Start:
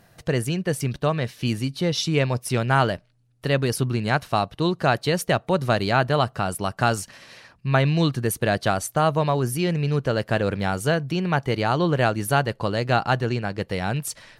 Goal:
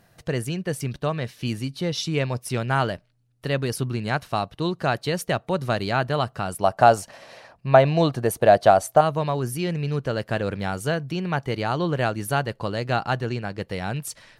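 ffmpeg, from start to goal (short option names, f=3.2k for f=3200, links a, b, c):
-filter_complex "[0:a]asettb=1/sr,asplit=3[a][b][c];[a]atrim=end=6.634[d];[b]atrim=start=6.63:end=9.01,asetpts=PTS-STARTPTS,afade=t=in:d=0.004:c=qsin,afade=t=out:st=2.376:d=0.004:c=qsin,equalizer=f=670:t=o:w=1.1:g=14[e];[c]atrim=start=9.006[f];[d][e]acrossfade=d=0.004:c1=hsin:c2=qsin[g];[g][f]acrossfade=d=0.004:c1=qsin:c2=hsin,volume=-3dB"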